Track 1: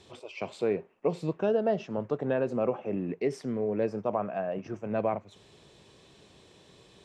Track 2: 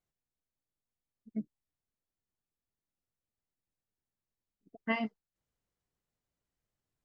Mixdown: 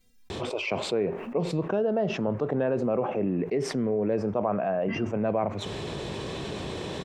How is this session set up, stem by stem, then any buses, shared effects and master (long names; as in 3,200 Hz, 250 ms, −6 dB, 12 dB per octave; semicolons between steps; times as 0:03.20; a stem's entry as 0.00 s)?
−1.0 dB, 0.30 s, no send, no processing
+1.5 dB, 0.00 s, no send, stiff-string resonator 240 Hz, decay 0.23 s, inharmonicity 0.008; all-pass phaser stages 2, 2.6 Hz, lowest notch 430–1,100 Hz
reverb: not used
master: high-shelf EQ 3,100 Hz −9.5 dB; envelope flattener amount 70%